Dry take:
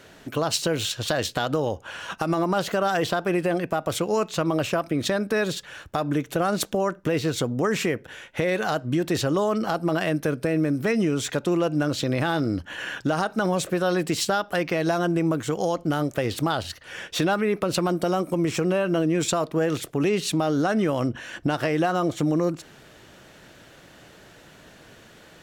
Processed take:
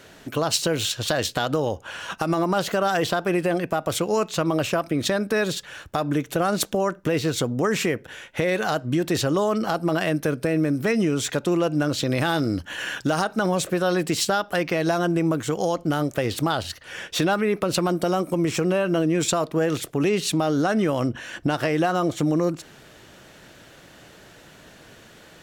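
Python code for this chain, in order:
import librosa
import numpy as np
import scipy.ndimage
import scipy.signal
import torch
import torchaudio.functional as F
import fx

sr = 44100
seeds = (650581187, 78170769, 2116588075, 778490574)

y = fx.high_shelf(x, sr, hz=4100.0, db=fx.steps((0.0, 2.5), (12.09, 8.0), (13.22, 2.0)))
y = F.gain(torch.from_numpy(y), 1.0).numpy()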